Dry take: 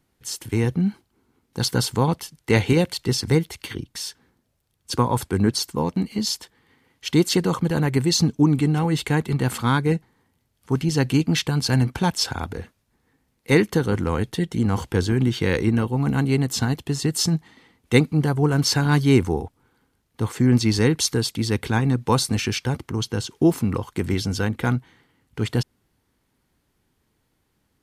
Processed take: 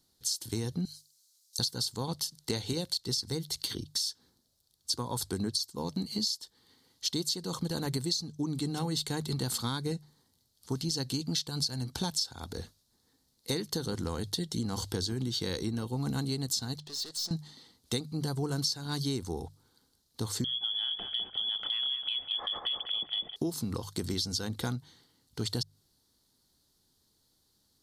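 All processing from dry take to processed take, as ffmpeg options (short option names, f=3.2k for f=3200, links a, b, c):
-filter_complex "[0:a]asettb=1/sr,asplit=3[a][b][c];[a]atrim=end=0.854[d];[b]atrim=start=0.85:end=1.59,asetpts=PTS-STARTPTS,afade=t=in:d=0.004:c=qsin,afade=t=out:st=0.736:d=0.004:c=qsin,bandpass=f=6.2k:t=q:w=1.4,aemphasis=mode=production:type=riaa[e];[c]atrim=start=1.586[f];[d][e]acrossfade=d=0.004:c1=hsin:c2=qsin[g];[g][f]acrossfade=d=0.004:c1=qsin:c2=hsin,asettb=1/sr,asplit=3[h][i][j];[h]atrim=end=16.784[k];[i]atrim=start=16.78:end=17.31,asetpts=PTS-STARTPTS,afade=t=in:d=0.004:c=qsin,afade=t=out:st=0.526:d=0.004:c=qsin,highpass=510,lowpass=5.3k,aeval=exprs='(tanh(89.1*val(0)+0.25)-tanh(0.25))/89.1':c=same[l];[j]atrim=start=17.306[m];[k][l]acrossfade=d=0.004:c1=hsin:c2=qsin[n];[n][m]acrossfade=d=0.004:c1=qsin:c2=hsin,asettb=1/sr,asplit=3[o][p][q];[o]atrim=end=20.444[r];[p]atrim=start=20.44:end=23.36,asetpts=PTS-STARTPTS,afade=t=in:d=0.004:c=qsin,afade=t=out:st=2.916:d=0.004:c=qsin,lowpass=f=3k:t=q:w=0.5098,lowpass=f=3k:t=q:w=0.6013,lowpass=f=3k:t=q:w=0.9,lowpass=f=3k:t=q:w=2.563,afreqshift=-3500,acompressor=threshold=-26dB:ratio=4:attack=3.2:release=140:knee=1:detection=peak,asplit=2[s][t];[t]adelay=200,lowpass=f=1.5k:p=1,volume=-4dB,asplit=2[u][v];[v]adelay=200,lowpass=f=1.5k:p=1,volume=0.54,asplit=2[w][x];[x]adelay=200,lowpass=f=1.5k:p=1,volume=0.54,asplit=2[y][z];[z]adelay=200,lowpass=f=1.5k:p=1,volume=0.54,asplit=2[aa][ab];[ab]adelay=200,lowpass=f=1.5k:p=1,volume=0.54,asplit=2[ac][ad];[ad]adelay=200,lowpass=f=1.5k:p=1,volume=0.54,asplit=2[ae][af];[af]adelay=200,lowpass=f=1.5k:p=1,volume=0.54[ag];[s][u][w][y][aa][ac][ae][ag]amix=inputs=8:normalize=0,atrim=end_sample=128772[ah];[q]atrim=start=23.356[ai];[r][ah]acrossfade=d=0.004:c1=hsin:c2=qsin[aj];[aj][ai]acrossfade=d=0.004:c1=qsin:c2=hsin,highshelf=f=3.2k:t=q:w=3:g=9.5,bandreject=f=50:t=h:w=6,bandreject=f=100:t=h:w=6,bandreject=f=150:t=h:w=6,acompressor=threshold=-22dB:ratio=16,volume=-6.5dB"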